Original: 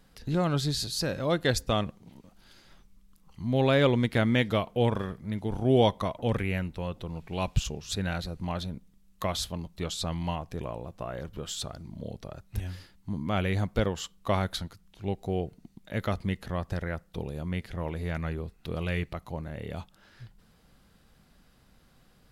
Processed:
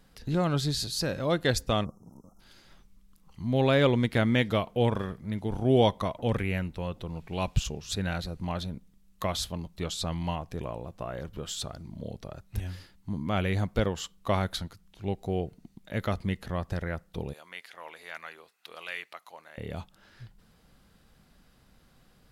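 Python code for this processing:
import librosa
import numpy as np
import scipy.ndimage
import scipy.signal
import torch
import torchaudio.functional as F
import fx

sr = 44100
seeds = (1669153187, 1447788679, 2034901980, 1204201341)

y = fx.spec_erase(x, sr, start_s=1.85, length_s=0.55, low_hz=1400.0, high_hz=5100.0)
y = fx.highpass(y, sr, hz=1000.0, slope=12, at=(17.33, 19.58))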